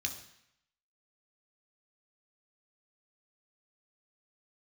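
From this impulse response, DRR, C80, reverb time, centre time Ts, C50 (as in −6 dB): 3.5 dB, 12.5 dB, 0.75 s, 15 ms, 10.0 dB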